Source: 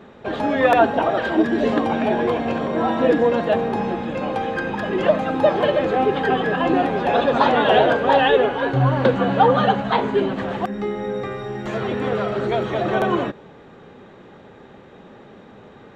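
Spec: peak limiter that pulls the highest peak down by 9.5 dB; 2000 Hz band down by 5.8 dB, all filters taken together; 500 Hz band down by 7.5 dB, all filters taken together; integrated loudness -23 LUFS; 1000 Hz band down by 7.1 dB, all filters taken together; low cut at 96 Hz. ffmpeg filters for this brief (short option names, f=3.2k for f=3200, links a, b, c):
-af "highpass=96,equalizer=f=500:t=o:g=-7.5,equalizer=f=1k:t=o:g=-5.5,equalizer=f=2k:t=o:g=-5,volume=5dB,alimiter=limit=-13.5dB:level=0:latency=1"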